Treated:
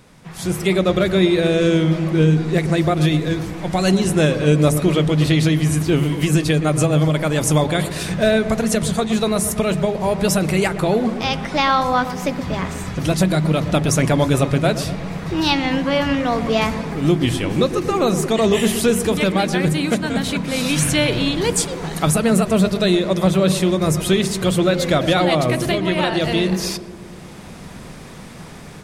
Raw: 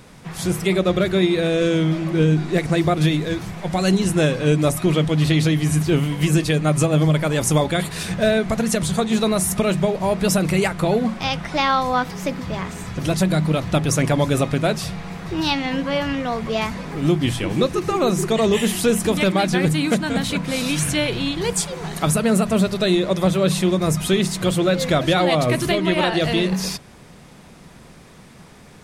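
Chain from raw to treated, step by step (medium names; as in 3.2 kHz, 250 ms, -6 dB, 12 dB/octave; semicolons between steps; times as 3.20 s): level rider; on a send: filtered feedback delay 120 ms, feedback 74%, low-pass 930 Hz, level -10.5 dB; on the sum: trim -4 dB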